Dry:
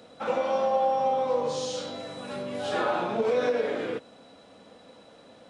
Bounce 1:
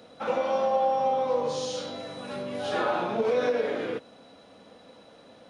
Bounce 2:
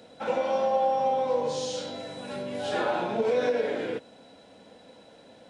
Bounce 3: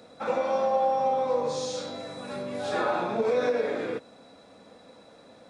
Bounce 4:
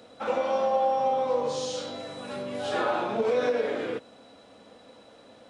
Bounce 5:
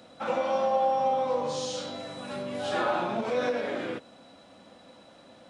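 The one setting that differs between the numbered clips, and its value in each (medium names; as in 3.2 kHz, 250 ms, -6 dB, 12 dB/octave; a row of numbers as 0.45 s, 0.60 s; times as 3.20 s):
band-stop, frequency: 7.7 kHz, 1.2 kHz, 3 kHz, 170 Hz, 450 Hz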